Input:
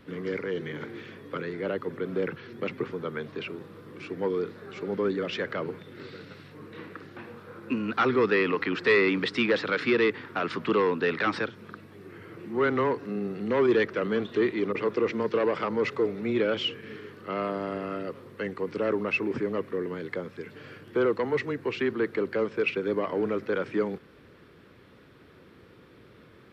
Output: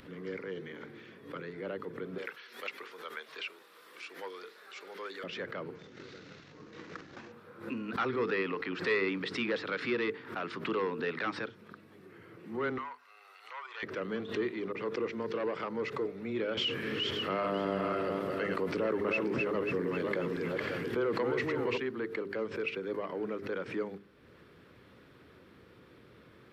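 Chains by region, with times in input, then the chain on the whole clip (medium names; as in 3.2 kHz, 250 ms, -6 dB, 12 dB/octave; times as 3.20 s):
2.18–5.24 s: high-pass 690 Hz + treble shelf 2.2 kHz +11 dB
5.75–7.32 s: CVSD coder 32 kbps + transient shaper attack +7 dB, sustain +11 dB
12.78–13.83 s: inverse Chebyshev high-pass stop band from 160 Hz, stop band 80 dB + band-stop 1.7 kHz, Q 7 + dynamic bell 4.5 kHz, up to -5 dB, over -50 dBFS, Q 0.78
16.57–21.78 s: backward echo that repeats 271 ms, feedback 42%, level -5 dB + level flattener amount 70%
whole clip: upward compressor, threshold -41 dBFS; hum notches 50/100/150/200/250/300/350/400/450 Hz; swell ahead of each attack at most 120 dB/s; trim -8 dB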